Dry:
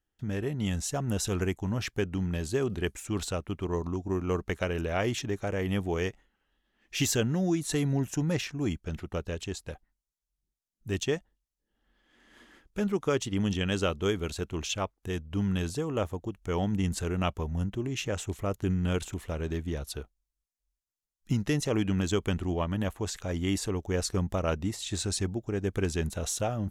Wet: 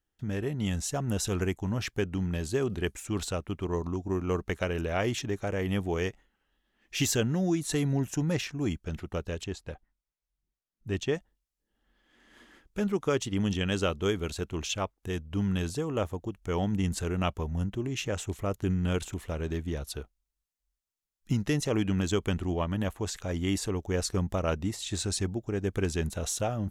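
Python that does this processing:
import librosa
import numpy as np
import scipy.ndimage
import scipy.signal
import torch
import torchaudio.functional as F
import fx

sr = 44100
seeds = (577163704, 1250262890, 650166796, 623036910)

y = fx.high_shelf(x, sr, hz=6000.0, db=-12.0, at=(9.44, 11.15))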